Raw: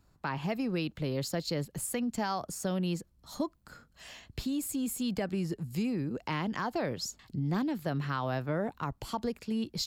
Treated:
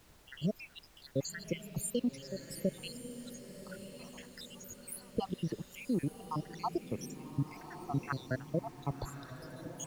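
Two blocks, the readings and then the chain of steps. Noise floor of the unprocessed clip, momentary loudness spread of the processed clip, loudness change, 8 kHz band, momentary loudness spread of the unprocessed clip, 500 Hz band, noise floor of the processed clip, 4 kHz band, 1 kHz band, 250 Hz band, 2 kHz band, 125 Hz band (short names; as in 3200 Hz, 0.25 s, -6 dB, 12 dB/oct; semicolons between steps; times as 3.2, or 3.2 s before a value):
-67 dBFS, 12 LU, -5.5 dB, -4.5 dB, 5 LU, -4.5 dB, -61 dBFS, -8.0 dB, -6.5 dB, -6.0 dB, -7.5 dB, -4.0 dB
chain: random spectral dropouts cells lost 80%; diffused feedback echo 1.141 s, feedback 46%, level -10.5 dB; added noise pink -64 dBFS; gain +2 dB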